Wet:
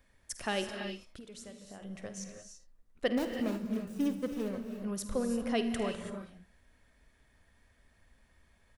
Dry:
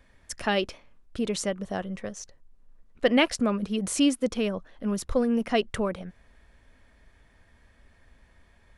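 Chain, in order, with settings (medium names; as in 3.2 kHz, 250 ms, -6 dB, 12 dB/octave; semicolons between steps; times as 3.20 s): 3.17–4.83 s: median filter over 41 samples; treble shelf 6.3 kHz +9 dB; 0.68–1.82 s: compression 10:1, threshold -38 dBFS, peak gain reduction 15 dB; early reflections 51 ms -14.5 dB, 77 ms -17.5 dB; gated-style reverb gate 360 ms rising, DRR 5.5 dB; trim -8.5 dB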